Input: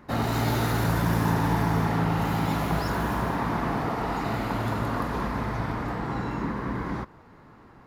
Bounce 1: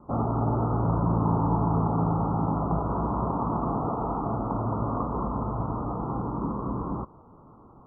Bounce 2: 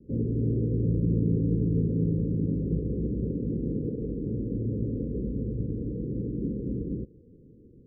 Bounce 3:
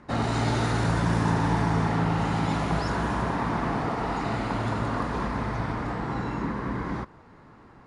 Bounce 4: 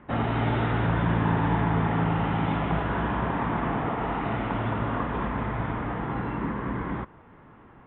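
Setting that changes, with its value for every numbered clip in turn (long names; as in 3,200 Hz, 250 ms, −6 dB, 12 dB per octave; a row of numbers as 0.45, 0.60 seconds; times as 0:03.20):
Butterworth low-pass, frequency: 1,300, 510, 10,000, 3,500 Hertz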